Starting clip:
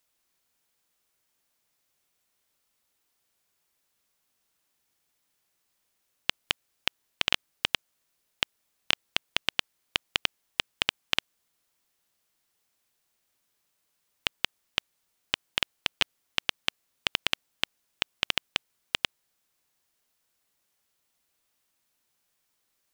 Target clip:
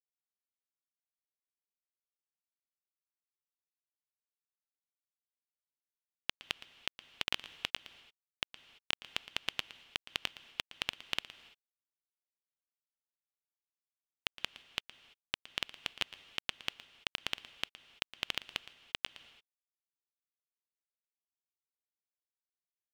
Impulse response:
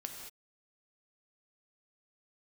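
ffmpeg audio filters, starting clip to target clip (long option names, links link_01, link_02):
-filter_complex "[0:a]acrusher=bits=6:mix=0:aa=0.000001,asplit=2[link_01][link_02];[1:a]atrim=start_sample=2205,adelay=115[link_03];[link_02][link_03]afir=irnorm=-1:irlink=0,volume=-13dB[link_04];[link_01][link_04]amix=inputs=2:normalize=0,volume=-9dB"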